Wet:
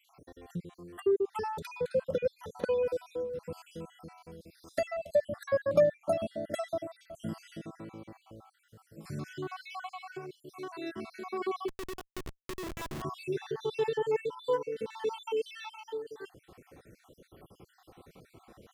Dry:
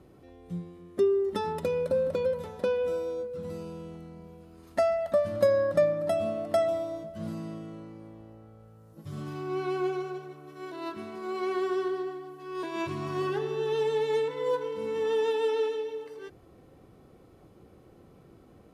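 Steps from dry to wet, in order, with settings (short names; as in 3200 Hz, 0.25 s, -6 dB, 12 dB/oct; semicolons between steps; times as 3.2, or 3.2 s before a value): random spectral dropouts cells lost 58%; 11.68–13.02 Schmitt trigger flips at -37.5 dBFS; mismatched tape noise reduction encoder only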